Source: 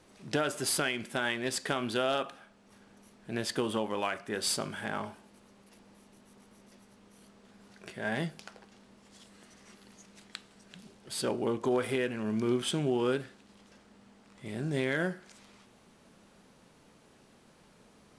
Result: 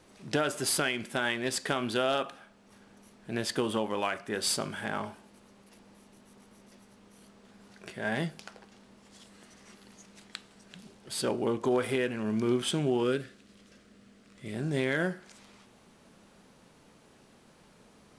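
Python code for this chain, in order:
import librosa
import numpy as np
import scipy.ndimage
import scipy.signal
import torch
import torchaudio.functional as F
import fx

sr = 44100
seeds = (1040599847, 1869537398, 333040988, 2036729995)

y = fx.peak_eq(x, sr, hz=880.0, db=-13.0, octaves=0.45, at=(13.03, 14.54))
y = F.gain(torch.from_numpy(y), 1.5).numpy()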